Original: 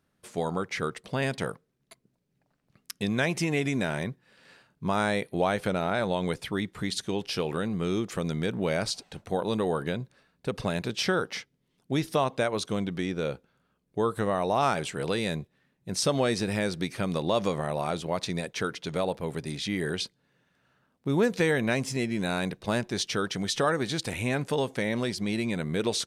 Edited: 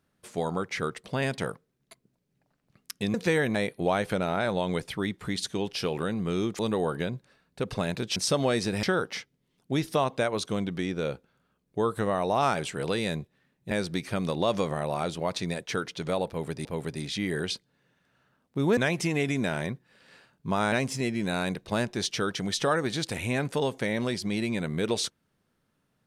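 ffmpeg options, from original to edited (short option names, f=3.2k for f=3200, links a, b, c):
-filter_complex "[0:a]asplit=10[a][b][c][d][e][f][g][h][i][j];[a]atrim=end=3.142[k];[b]atrim=start=21.268:end=21.682[l];[c]atrim=start=5.088:end=8.132[m];[d]atrim=start=9.458:end=11.032[n];[e]atrim=start=15.908:end=16.582[o];[f]atrim=start=11.028:end=15.912[p];[g]atrim=start=16.578:end=19.522[q];[h]atrim=start=19.148:end=21.272[r];[i]atrim=start=3.138:end=5.092[s];[j]atrim=start=21.678[t];[k][l]acrossfade=d=0.004:c1=hsin:c2=hsin[u];[u][m]acrossfade=d=0.004:c1=hsin:c2=hsin[v];[v][n]acrossfade=d=0.004:c1=hsin:c2=hsin[w];[w][o]acrossfade=d=0.004:c1=hsin:c2=hsin[x];[x][p]acrossfade=d=0.004:c1=hsin:c2=hsin[y];[y][q]acrossfade=d=0.004:c1=hsin:c2=hsin[z];[z][r]acrossfade=d=0.004:c1=hsin:c2=hsin[aa];[aa][s]acrossfade=d=0.004:c1=hsin:c2=hsin[ab];[ab][t]acrossfade=d=0.004:c1=hsin:c2=hsin"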